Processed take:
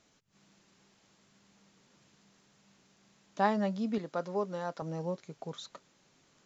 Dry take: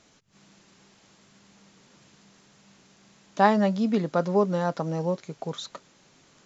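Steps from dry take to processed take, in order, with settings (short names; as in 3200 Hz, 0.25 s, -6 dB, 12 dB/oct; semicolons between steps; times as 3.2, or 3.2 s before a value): 3.98–4.82 low shelf 190 Hz -12 dB; gain -8.5 dB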